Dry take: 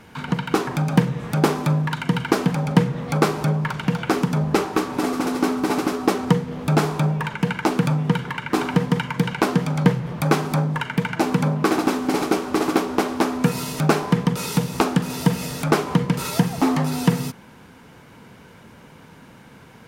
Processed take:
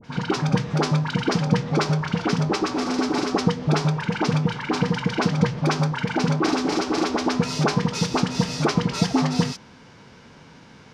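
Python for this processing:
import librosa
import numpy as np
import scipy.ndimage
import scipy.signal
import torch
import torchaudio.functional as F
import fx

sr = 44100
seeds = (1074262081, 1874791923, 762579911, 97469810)

y = fx.lowpass_res(x, sr, hz=5400.0, q=2.4)
y = fx.dispersion(y, sr, late='highs', ms=79.0, hz=1100.0)
y = fx.stretch_vocoder(y, sr, factor=0.55)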